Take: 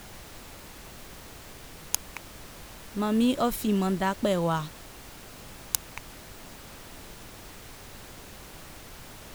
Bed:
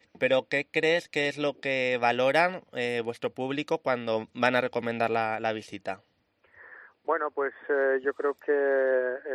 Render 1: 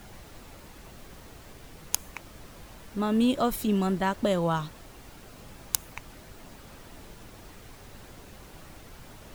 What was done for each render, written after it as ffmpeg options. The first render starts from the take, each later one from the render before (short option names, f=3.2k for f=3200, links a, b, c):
-af "afftdn=nr=6:nf=-47"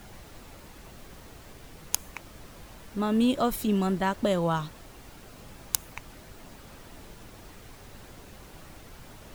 -af anull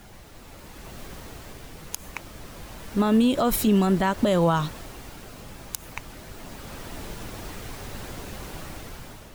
-af "dynaudnorm=f=340:g=5:m=10.5dB,alimiter=limit=-12.5dB:level=0:latency=1:release=96"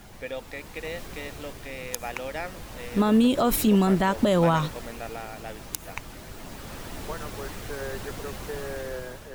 -filter_complex "[1:a]volume=-11dB[a];[0:a][a]amix=inputs=2:normalize=0"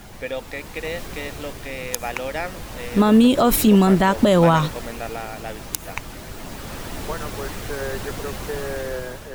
-af "volume=6dB"